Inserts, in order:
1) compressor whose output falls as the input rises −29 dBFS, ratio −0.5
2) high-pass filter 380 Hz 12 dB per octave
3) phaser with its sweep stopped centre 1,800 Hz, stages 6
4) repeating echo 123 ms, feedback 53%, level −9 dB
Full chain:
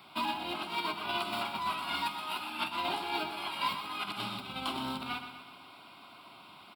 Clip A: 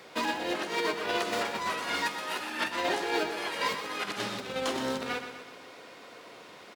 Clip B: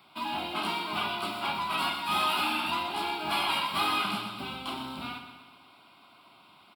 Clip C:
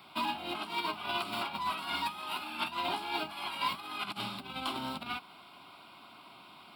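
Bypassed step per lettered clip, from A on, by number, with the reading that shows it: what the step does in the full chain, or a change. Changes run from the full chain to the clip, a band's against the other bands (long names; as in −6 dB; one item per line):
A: 3, 500 Hz band +8.0 dB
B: 1, change in crest factor −2.0 dB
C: 4, echo-to-direct ratio −7.5 dB to none audible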